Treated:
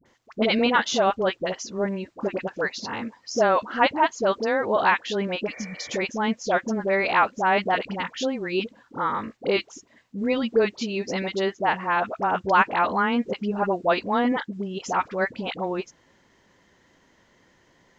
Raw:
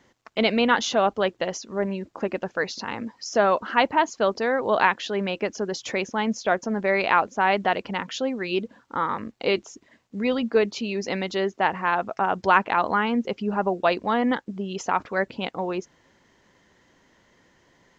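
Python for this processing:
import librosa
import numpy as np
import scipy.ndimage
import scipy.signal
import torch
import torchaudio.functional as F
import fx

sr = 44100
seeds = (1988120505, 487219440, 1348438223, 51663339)

y = fx.spec_repair(x, sr, seeds[0], start_s=5.47, length_s=0.35, low_hz=340.0, high_hz=2400.0, source='after')
y = fx.dispersion(y, sr, late='highs', ms=57.0, hz=780.0)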